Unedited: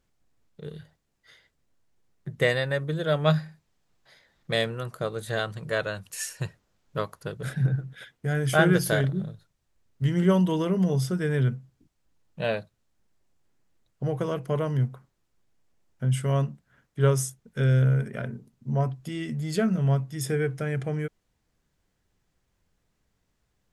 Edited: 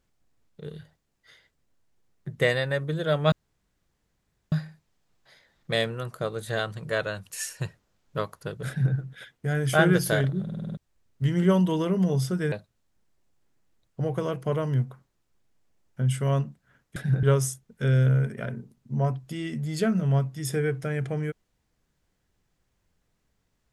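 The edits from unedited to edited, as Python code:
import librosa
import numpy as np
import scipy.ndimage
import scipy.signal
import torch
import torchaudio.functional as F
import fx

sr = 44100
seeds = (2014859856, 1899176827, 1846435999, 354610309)

y = fx.edit(x, sr, fx.insert_room_tone(at_s=3.32, length_s=1.2),
    fx.duplicate(start_s=7.48, length_s=0.27, to_s=16.99),
    fx.stutter_over(start_s=9.22, slice_s=0.05, count=7),
    fx.cut(start_s=11.32, length_s=1.23), tone=tone)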